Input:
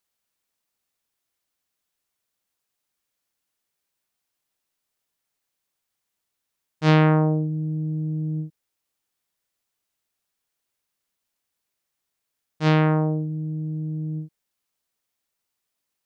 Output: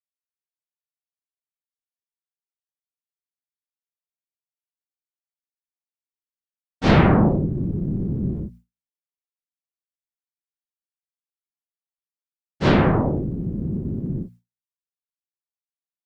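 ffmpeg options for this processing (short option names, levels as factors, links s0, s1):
-af "afftfilt=real='hypot(re,im)*cos(2*PI*random(0))':imag='hypot(re,im)*sin(2*PI*random(1))':win_size=512:overlap=0.75,bandreject=f=59.11:t=h:w=4,bandreject=f=118.22:t=h:w=4,bandreject=f=177.33:t=h:w=4,bandreject=f=236.44:t=h:w=4,agate=range=0.0224:threshold=0.00447:ratio=3:detection=peak,volume=2.66"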